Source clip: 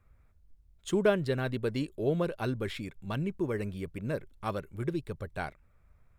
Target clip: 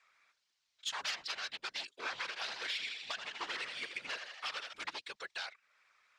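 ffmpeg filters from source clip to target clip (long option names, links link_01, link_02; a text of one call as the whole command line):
ffmpeg -i in.wav -filter_complex "[0:a]aeval=exprs='0.0376*(abs(mod(val(0)/0.0376+3,4)-2)-1)':channel_layout=same,highpass=1400,asettb=1/sr,asplit=3[link_01][link_02][link_03];[link_01]atrim=end=2.164[link_04];[link_02]atrim=start=2.16:end=4.73,asetpts=PTS-STARTPTS,afade=type=in:duration=0.004:curve=qsin,afade=type=out:start_time=2.566:duration=0.004:curve=qsin,asplit=8[link_05][link_06][link_07][link_08][link_09][link_10][link_11][link_12];[link_06]adelay=81,afreqshift=62,volume=-8dB[link_13];[link_07]adelay=162,afreqshift=124,volume=-12.7dB[link_14];[link_08]adelay=243,afreqshift=186,volume=-17.5dB[link_15];[link_09]adelay=324,afreqshift=248,volume=-22.2dB[link_16];[link_10]adelay=405,afreqshift=310,volume=-26.9dB[link_17];[link_11]adelay=486,afreqshift=372,volume=-31.7dB[link_18];[link_12]adelay=567,afreqshift=434,volume=-36.4dB[link_19];[link_05][link_13][link_14][link_15][link_16][link_17][link_18][link_19]amix=inputs=8:normalize=0,atrim=end_sample=113337[link_20];[link_03]atrim=start=4.726[link_21];[link_04][link_20]acrossfade=duration=0.004:curve1=hsin:curve2=qsin[link_22];[link_22][link_21]acrossfade=duration=0.004:curve1=qsin:curve2=hsin,crystalizer=i=4:c=0,lowpass=frequency=5300:width=0.5412,lowpass=frequency=5300:width=1.3066,alimiter=level_in=9dB:limit=-24dB:level=0:latency=1:release=404,volume=-9dB,afftfilt=real='hypot(re,im)*cos(2*PI*random(0))':imag='hypot(re,im)*sin(2*PI*random(1))':win_size=512:overlap=0.75,asoftclip=type=tanh:threshold=-39dB,volume=13.5dB" out.wav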